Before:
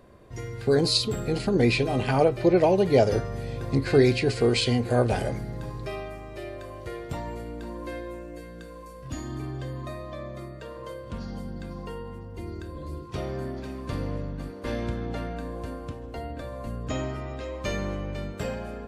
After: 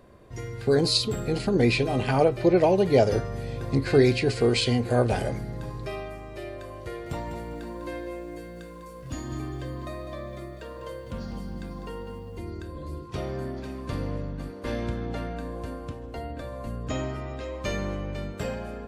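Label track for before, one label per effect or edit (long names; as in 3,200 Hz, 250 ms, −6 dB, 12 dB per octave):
6.860000	12.380000	feedback echo at a low word length 200 ms, feedback 35%, word length 10 bits, level −9 dB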